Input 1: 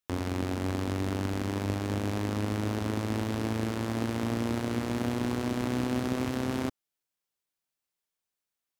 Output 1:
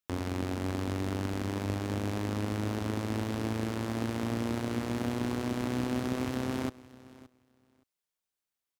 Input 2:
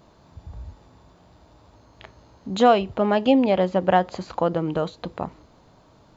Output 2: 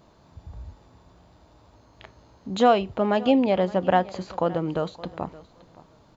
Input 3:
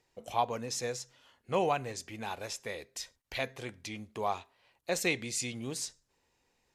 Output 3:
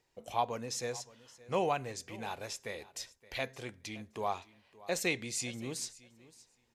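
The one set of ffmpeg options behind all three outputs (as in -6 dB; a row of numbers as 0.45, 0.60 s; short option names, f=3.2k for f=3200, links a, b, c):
-af "aecho=1:1:570|1140:0.1|0.016,volume=-2dB"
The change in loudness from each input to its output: -2.0, -2.0, -2.0 LU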